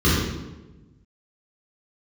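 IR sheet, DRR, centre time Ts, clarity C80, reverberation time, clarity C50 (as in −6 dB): −10.5 dB, 84 ms, 2.0 dB, 1.1 s, −1.5 dB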